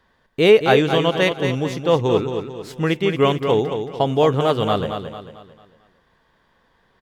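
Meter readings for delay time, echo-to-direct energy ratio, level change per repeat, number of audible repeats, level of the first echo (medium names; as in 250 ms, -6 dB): 223 ms, -6.5 dB, -7.5 dB, 4, -7.5 dB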